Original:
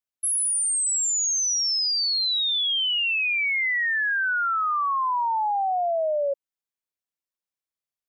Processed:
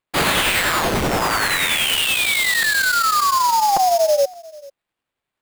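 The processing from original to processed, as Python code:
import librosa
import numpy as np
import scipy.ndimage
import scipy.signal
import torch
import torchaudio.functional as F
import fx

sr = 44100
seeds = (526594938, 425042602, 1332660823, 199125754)

y = fx.rider(x, sr, range_db=10, speed_s=2.0)
y = fx.stretch_grains(y, sr, factor=0.67, grain_ms=192.0)
y = fx.sample_hold(y, sr, seeds[0], rate_hz=5900.0, jitter_pct=20)
y = y + 10.0 ** (-22.0 / 20.0) * np.pad(y, (int(442 * sr / 1000.0), 0))[:len(y)]
y = fx.buffer_crackle(y, sr, first_s=0.91, period_s=0.57, block=256, kind='repeat')
y = y * librosa.db_to_amplitude(7.0)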